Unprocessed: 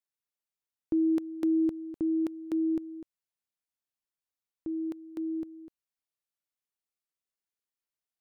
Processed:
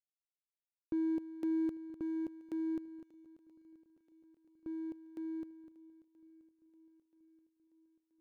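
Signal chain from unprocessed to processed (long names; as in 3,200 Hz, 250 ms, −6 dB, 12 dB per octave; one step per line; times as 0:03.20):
running median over 41 samples
feedback echo with a long and a short gap by turns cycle 979 ms, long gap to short 1.5 to 1, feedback 52%, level −21.5 dB
level −7.5 dB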